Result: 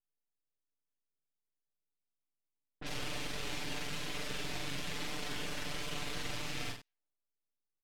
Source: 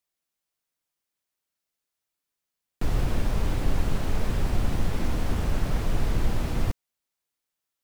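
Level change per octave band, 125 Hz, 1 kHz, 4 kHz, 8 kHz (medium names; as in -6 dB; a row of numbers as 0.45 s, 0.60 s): -19.0 dB, -8.5 dB, +2.5 dB, -1.0 dB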